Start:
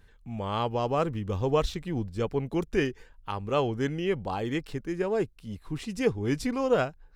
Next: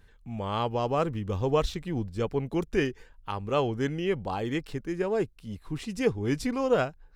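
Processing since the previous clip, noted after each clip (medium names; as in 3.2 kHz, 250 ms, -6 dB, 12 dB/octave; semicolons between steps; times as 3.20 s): no audible change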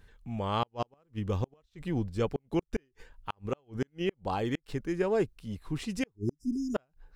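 spectral selection erased 6.16–6.75 s, 430–4900 Hz; inverted gate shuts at -18 dBFS, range -41 dB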